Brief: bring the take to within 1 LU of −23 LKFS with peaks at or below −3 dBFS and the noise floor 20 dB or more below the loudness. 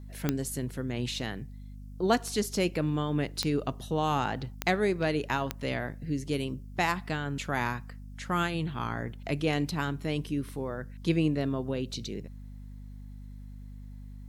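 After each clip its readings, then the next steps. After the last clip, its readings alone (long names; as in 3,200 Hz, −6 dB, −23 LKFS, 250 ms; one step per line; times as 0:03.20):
number of clicks 4; mains hum 50 Hz; hum harmonics up to 250 Hz; level of the hum −41 dBFS; integrated loudness −31.0 LKFS; sample peak −9.5 dBFS; target loudness −23.0 LKFS
→ click removal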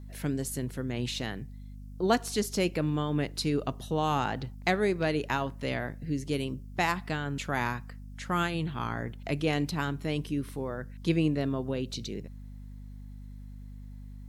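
number of clicks 0; mains hum 50 Hz; hum harmonics up to 250 Hz; level of the hum −41 dBFS
→ hum removal 50 Hz, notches 5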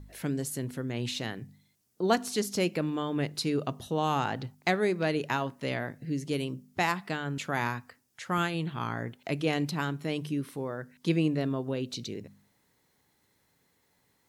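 mains hum none found; integrated loudness −31.5 LKFS; sample peak −10.5 dBFS; target loudness −23.0 LKFS
→ level +8.5 dB
brickwall limiter −3 dBFS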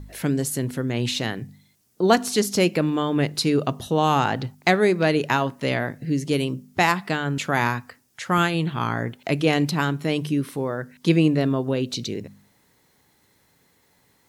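integrated loudness −23.0 LKFS; sample peak −3.0 dBFS; background noise floor −63 dBFS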